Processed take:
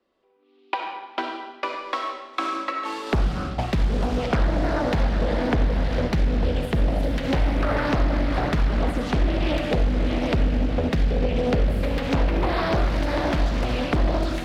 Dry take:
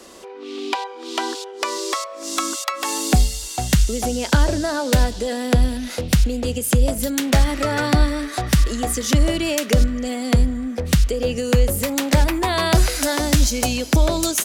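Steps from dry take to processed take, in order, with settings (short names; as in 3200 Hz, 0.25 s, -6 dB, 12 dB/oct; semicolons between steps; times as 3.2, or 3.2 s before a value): diffused feedback echo 0.808 s, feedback 43%, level -6.5 dB; gate -22 dBFS, range -29 dB; high shelf 3600 Hz +8.5 dB; on a send at -2 dB: reverb RT60 1.1 s, pre-delay 20 ms; on the sum: compressor, threshold -18 dBFS, peak gain reduction 11 dB; air absorption 400 m; Doppler distortion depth 0.77 ms; gain +1.5 dB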